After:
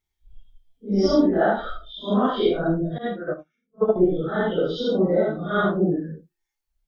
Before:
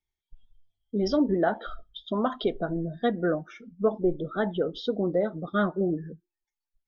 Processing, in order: phase randomisation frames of 200 ms; 2.98–3.96 s: upward expansion 2.5:1, over -44 dBFS; trim +6 dB

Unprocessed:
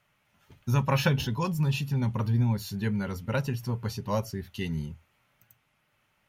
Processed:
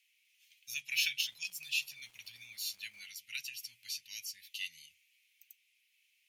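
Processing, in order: elliptic high-pass 2.3 kHz, stop band 50 dB; 1.18–3.06 s: crackle 320 per s -57 dBFS; trim +3 dB

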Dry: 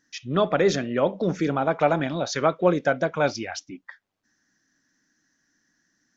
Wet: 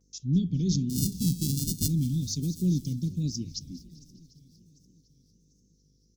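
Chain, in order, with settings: 0.89–1.89 s: sorted samples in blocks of 64 samples; inverse Chebyshev band-stop 690–1700 Hz, stop band 70 dB; bass shelf 190 Hz +8.5 dB; shuffle delay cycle 745 ms, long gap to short 1.5:1, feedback 41%, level -22 dB; vibrato 1.3 Hz 91 cents; frequency-shifting echo 201 ms, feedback 57%, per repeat -32 Hz, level -19 dB; mains buzz 50 Hz, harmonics 10, -68 dBFS -6 dB/octave; 2.43–2.93 s: treble shelf 4.4 kHz +9 dB

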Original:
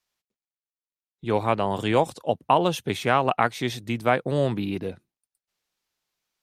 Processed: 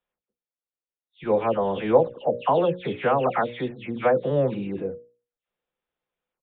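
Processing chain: delay that grows with frequency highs early, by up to 225 ms; peaking EQ 500 Hz +10.5 dB 0.22 oct; resampled via 8 kHz; treble shelf 2.2 kHz -10.5 dB; hum notches 60/120/180/240/300/360/420/480/540/600 Hz

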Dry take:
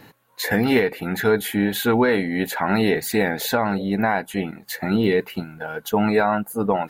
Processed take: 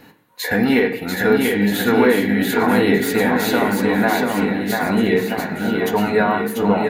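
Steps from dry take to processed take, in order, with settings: bouncing-ball echo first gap 690 ms, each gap 0.85×, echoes 5; on a send at -2.5 dB: reverberation RT60 0.65 s, pre-delay 3 ms

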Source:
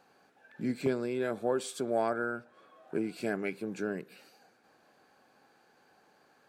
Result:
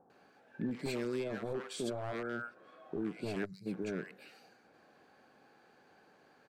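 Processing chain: one-sided wavefolder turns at -27.5 dBFS; 0.69–1.14 s: treble shelf 2.7 kHz +11 dB; peak limiter -30 dBFS, peak gain reduction 12.5 dB; treble shelf 5.5 kHz -11.5 dB; bands offset in time lows, highs 100 ms, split 950 Hz; 3.45–3.66 s: time-frequency box 210–3800 Hz -26 dB; trim +2.5 dB

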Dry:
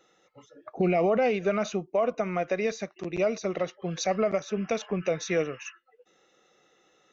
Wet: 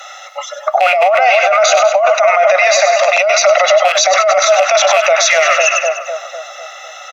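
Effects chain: rattle on loud lows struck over -30 dBFS, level -32 dBFS; steep high-pass 580 Hz 96 dB/octave; comb 1.5 ms, depth 52%; two-band feedback delay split 1.3 kHz, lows 250 ms, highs 99 ms, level -10 dB; compressor with a negative ratio -32 dBFS, ratio -1; loudness maximiser +29 dB; trim -1 dB; Opus 256 kbps 48 kHz

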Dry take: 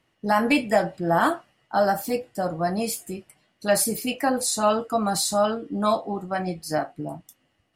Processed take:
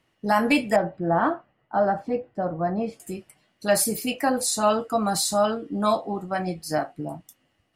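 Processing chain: 0.76–3.00 s: Bessel low-pass 1.3 kHz, order 2

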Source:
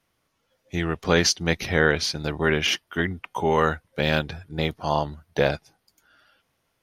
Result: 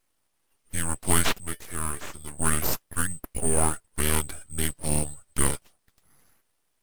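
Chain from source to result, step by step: split-band scrambler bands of 4 kHz; 1.40–2.38 s: feedback comb 300 Hz, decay 0.16 s, harmonics odd, mix 70%; full-wave rectifier

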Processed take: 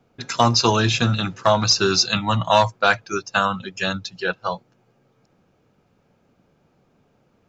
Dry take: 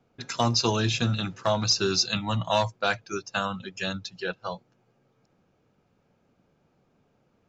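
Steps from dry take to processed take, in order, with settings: dynamic bell 1.2 kHz, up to +5 dB, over -38 dBFS, Q 0.92; trim +5.5 dB

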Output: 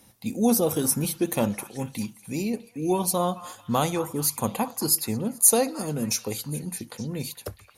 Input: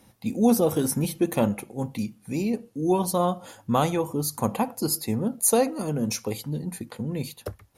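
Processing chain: treble shelf 3.4 kHz +8 dB; on a send: repeats whose band climbs or falls 217 ms, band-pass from 1.3 kHz, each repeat 0.7 oct, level -10 dB; on the sum: trim -2 dB

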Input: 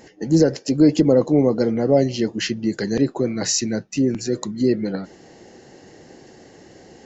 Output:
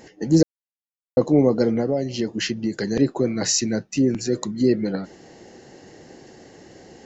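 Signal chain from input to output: 0.43–1.17 s: mute; 1.80–2.97 s: compression 4:1, threshold -20 dBFS, peak gain reduction 8.5 dB

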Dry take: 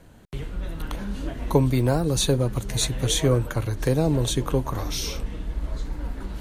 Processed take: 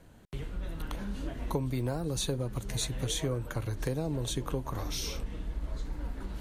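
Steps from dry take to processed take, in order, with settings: compression 3:1, threshold -24 dBFS, peak gain reduction 8.5 dB; trim -5.5 dB

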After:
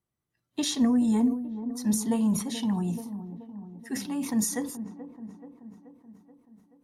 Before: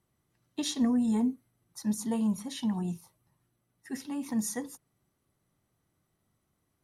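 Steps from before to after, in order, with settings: spectral noise reduction 14 dB; feedback echo behind a low-pass 430 ms, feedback 59%, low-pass 910 Hz, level -11.5 dB; decay stretcher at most 98 dB/s; trim +3.5 dB

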